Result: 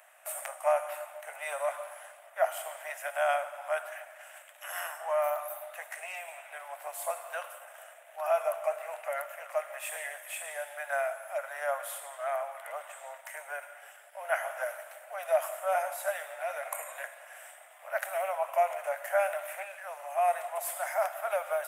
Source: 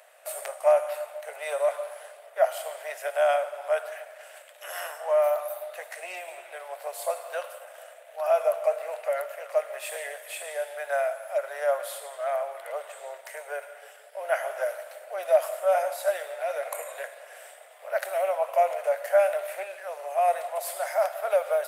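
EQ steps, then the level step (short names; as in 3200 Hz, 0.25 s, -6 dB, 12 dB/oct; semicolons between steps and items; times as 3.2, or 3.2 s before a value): HPF 730 Hz 24 dB/oct; bell 4400 Hz -11 dB 0.64 oct; 0.0 dB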